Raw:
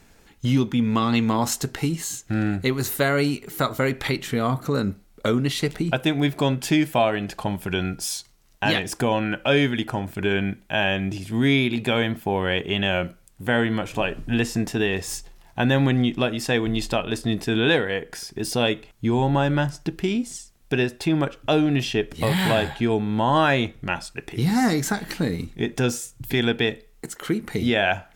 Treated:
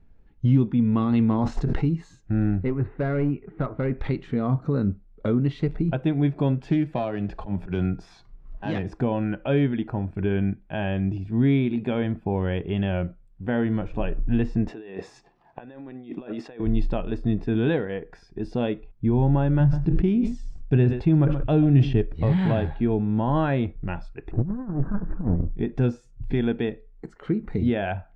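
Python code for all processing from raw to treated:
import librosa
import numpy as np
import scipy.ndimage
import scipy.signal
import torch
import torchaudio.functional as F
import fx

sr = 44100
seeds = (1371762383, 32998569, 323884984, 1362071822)

y = fx.chain(x, sr, fx.lowpass(hz=11000.0, slope=12),
    fx.sustainer(db_per_s=30.0), at=(0.85, 1.89))
y = fx.chain(y, sr, fx.lowpass(hz=2500.0, slope=24),
    fx.clip_hard(threshold_db=-17.0), at=(2.63, 3.99))
y = fx.chain(y, sr, fx.self_delay(depth_ms=0.078),
    fx.auto_swell(attack_ms=158.0),
    fx.band_squash(depth_pct=70), at=(6.7, 8.92))
y = fx.chain(y, sr, fx.highpass(hz=240.0, slope=12),
    fx.over_compress(threshold_db=-33.0, ratio=-1.0), at=(14.68, 16.6))
y = fx.chain(y, sr, fx.peak_eq(hz=110.0, db=6.0, octaves=1.4),
    fx.echo_single(ms=129, db=-17.0),
    fx.sustainer(db_per_s=62.0), at=(19.6, 22.02))
y = fx.chain(y, sr, fx.lower_of_two(delay_ms=0.73),
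    fx.lowpass(hz=1400.0, slope=24),
    fx.over_compress(threshold_db=-25.0, ratio=-0.5), at=(24.31, 25.56))
y = fx.noise_reduce_blind(y, sr, reduce_db=8)
y = scipy.signal.sosfilt(scipy.signal.butter(2, 4000.0, 'lowpass', fs=sr, output='sos'), y)
y = fx.tilt_eq(y, sr, slope=-4.0)
y = F.gain(torch.from_numpy(y), -8.0).numpy()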